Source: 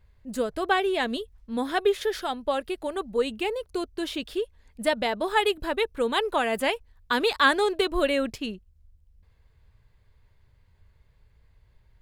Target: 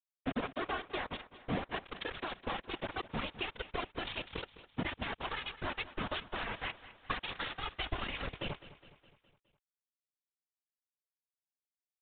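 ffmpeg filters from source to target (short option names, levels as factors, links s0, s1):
-filter_complex "[0:a]aemphasis=mode=reproduction:type=50fm,dynaudnorm=f=750:g=7:m=3.98,afftfilt=real='re*lt(hypot(re,im),0.708)':imag='im*lt(hypot(re,im),0.708)':win_size=1024:overlap=0.75,acompressor=threshold=0.0158:ratio=20,aresample=16000,acrusher=bits=5:mix=0:aa=0.000001,aresample=44100,afftfilt=real='hypot(re,im)*cos(2*PI*random(0))':imag='hypot(re,im)*sin(2*PI*random(1))':win_size=512:overlap=0.75,asubboost=boost=2.5:cutoff=130,asplit=2[s0][s1];[s1]aecho=0:1:207|414|621|828|1035:0.158|0.0856|0.0462|0.025|0.0135[s2];[s0][s2]amix=inputs=2:normalize=0,aresample=8000,aresample=44100,volume=2.24"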